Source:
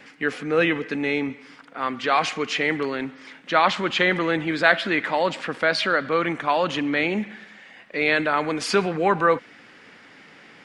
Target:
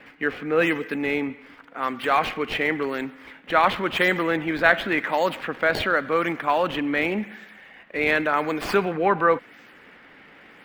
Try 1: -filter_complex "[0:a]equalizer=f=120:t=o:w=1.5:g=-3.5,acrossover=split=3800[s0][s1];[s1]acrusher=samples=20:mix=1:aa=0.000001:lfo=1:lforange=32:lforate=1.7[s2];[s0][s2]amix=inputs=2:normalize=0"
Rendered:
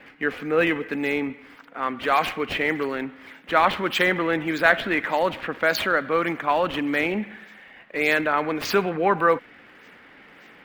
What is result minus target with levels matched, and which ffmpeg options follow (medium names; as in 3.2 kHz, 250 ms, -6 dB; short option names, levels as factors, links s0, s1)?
decimation with a swept rate: distortion -10 dB
-filter_complex "[0:a]equalizer=f=120:t=o:w=1.5:g=-3.5,acrossover=split=3800[s0][s1];[s1]acrusher=samples=20:mix=1:aa=0.000001:lfo=1:lforange=32:lforate=0.91[s2];[s0][s2]amix=inputs=2:normalize=0"